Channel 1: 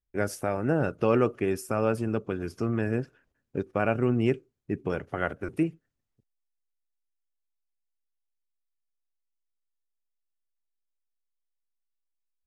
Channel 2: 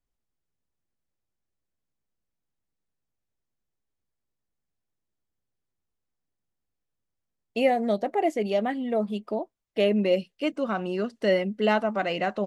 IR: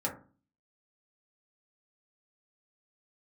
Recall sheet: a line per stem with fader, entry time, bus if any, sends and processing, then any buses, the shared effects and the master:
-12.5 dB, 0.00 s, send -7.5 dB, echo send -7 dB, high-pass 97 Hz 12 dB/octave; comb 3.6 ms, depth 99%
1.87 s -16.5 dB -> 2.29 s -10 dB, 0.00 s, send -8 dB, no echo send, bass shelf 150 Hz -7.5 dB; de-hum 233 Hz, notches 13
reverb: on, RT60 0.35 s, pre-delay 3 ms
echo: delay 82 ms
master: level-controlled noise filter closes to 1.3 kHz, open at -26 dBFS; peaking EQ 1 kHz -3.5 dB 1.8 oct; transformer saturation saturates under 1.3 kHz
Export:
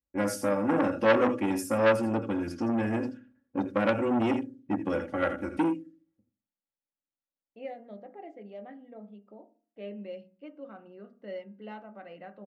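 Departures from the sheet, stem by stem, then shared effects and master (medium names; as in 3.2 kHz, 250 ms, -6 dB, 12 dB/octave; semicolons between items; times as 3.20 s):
stem 1 -12.5 dB -> -3.5 dB; stem 2 -16.5 dB -> -27.0 dB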